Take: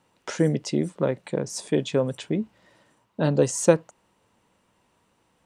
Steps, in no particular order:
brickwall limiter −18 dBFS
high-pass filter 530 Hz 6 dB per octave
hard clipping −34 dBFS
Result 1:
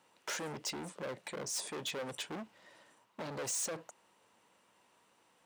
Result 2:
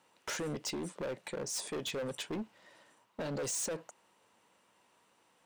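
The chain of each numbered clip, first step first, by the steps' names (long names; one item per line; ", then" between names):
brickwall limiter, then hard clipping, then high-pass filter
brickwall limiter, then high-pass filter, then hard clipping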